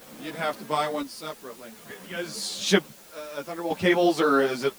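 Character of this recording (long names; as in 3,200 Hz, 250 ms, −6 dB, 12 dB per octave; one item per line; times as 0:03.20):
chopped level 0.54 Hz, depth 65%, duty 55%
a quantiser's noise floor 8 bits, dither triangular
a shimmering, thickened sound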